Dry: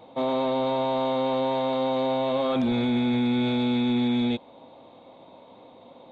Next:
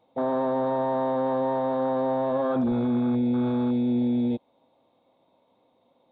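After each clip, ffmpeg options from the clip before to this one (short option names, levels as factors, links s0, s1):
-af "afwtdn=0.0316"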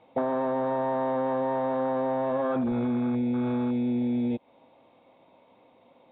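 -af "acompressor=threshold=0.0282:ratio=10,lowpass=f=2500:t=q:w=2,volume=2.11"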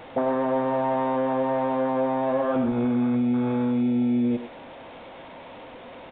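-filter_complex "[0:a]aeval=exprs='val(0)+0.5*0.00944*sgn(val(0))':c=same,asplit=2[s0][s1];[s1]adelay=100,highpass=300,lowpass=3400,asoftclip=type=hard:threshold=0.0596,volume=0.447[s2];[s0][s2]amix=inputs=2:normalize=0,aresample=8000,aresample=44100,volume=1.26"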